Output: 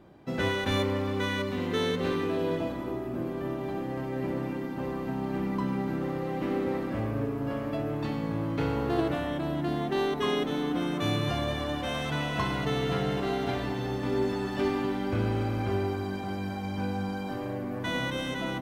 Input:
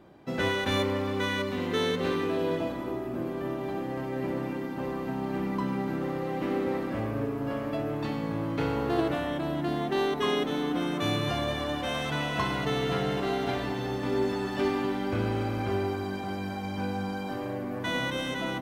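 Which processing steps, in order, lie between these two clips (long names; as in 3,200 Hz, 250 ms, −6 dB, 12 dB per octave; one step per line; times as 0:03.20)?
low-shelf EQ 180 Hz +5 dB
level −1.5 dB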